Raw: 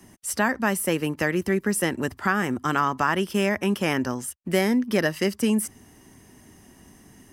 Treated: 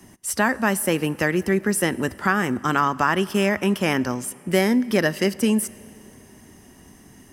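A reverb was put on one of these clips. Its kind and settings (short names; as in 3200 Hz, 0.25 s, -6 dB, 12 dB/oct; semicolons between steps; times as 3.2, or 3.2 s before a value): plate-style reverb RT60 3.1 s, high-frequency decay 0.75×, DRR 19 dB; gain +2.5 dB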